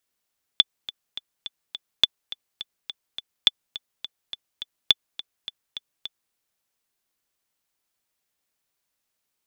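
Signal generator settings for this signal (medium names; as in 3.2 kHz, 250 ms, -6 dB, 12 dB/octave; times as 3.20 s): metronome 209 bpm, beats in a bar 5, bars 4, 3.48 kHz, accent 17.5 dB -1.5 dBFS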